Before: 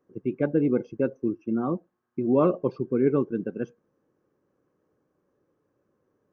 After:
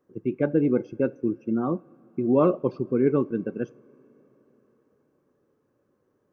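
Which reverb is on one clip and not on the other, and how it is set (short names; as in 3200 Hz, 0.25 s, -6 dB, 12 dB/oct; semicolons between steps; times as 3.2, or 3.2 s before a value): two-slope reverb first 0.38 s, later 4.9 s, from -18 dB, DRR 19 dB; gain +1 dB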